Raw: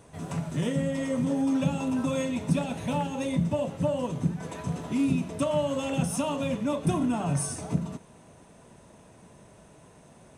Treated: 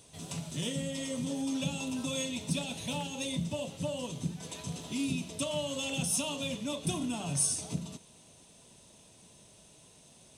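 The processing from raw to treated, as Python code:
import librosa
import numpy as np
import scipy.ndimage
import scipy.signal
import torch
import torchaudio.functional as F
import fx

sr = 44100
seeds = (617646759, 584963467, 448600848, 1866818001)

y = fx.high_shelf_res(x, sr, hz=2400.0, db=12.0, q=1.5)
y = F.gain(torch.from_numpy(y), -8.0).numpy()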